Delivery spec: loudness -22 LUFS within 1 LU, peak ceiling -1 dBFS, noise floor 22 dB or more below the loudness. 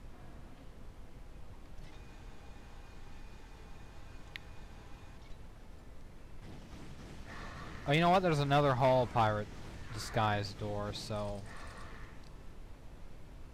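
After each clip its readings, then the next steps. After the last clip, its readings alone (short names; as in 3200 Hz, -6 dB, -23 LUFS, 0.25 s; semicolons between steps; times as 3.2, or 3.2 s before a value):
clipped 0.4%; flat tops at -22.0 dBFS; noise floor -53 dBFS; noise floor target -55 dBFS; loudness -33.0 LUFS; peak -22.0 dBFS; loudness target -22.0 LUFS
-> clip repair -22 dBFS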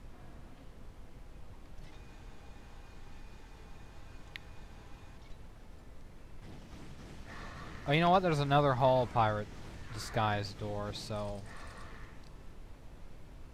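clipped 0.0%; noise floor -53 dBFS; noise floor target -54 dBFS
-> noise print and reduce 6 dB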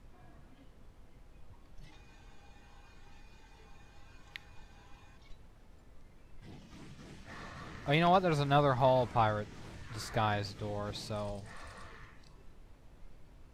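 noise floor -59 dBFS; loudness -32.0 LUFS; peak -15.0 dBFS; loudness target -22.0 LUFS
-> gain +10 dB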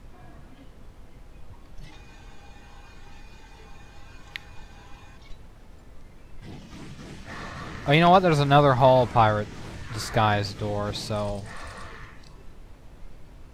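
loudness -22.0 LUFS; peak -5.0 dBFS; noise floor -49 dBFS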